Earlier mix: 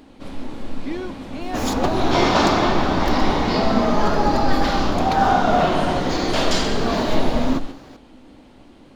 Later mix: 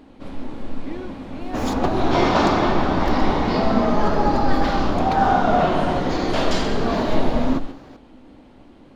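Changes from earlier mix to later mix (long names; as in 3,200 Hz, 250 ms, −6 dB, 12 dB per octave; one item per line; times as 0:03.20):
speech −4.5 dB
master: add high-shelf EQ 3,300 Hz −8.5 dB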